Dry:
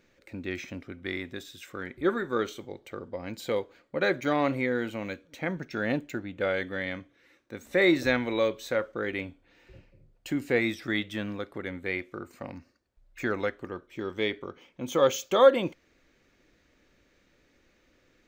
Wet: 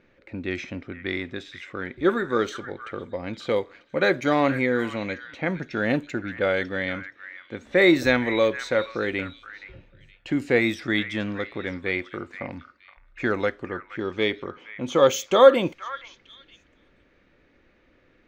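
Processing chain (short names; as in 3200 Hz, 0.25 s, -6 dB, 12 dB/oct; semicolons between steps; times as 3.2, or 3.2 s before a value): delay with a stepping band-pass 0.471 s, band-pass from 1600 Hz, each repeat 1.4 oct, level -9.5 dB; low-pass opened by the level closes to 2700 Hz, open at -23 dBFS; gain +5 dB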